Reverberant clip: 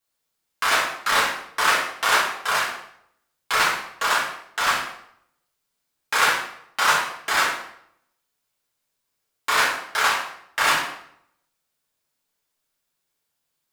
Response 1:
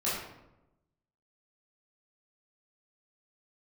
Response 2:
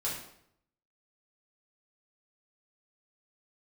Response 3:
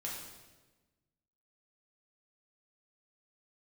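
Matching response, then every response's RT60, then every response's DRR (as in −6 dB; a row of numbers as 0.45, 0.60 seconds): 2; 0.90, 0.70, 1.2 seconds; −10.0, −7.5, −5.0 decibels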